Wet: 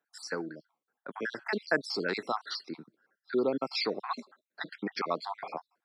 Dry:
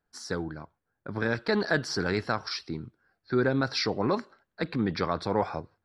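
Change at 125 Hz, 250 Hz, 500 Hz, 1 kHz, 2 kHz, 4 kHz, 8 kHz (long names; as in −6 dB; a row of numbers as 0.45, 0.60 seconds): −17.0, −7.5, −4.5, −3.0, −3.5, −3.0, −7.5 decibels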